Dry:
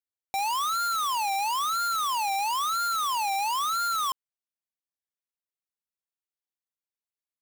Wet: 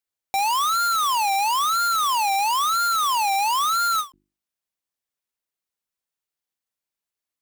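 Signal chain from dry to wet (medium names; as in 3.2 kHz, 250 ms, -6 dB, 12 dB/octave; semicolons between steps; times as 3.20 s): hum notches 50/100/150/200/250/300/350 Hz; endings held to a fixed fall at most 280 dB/s; trim +6 dB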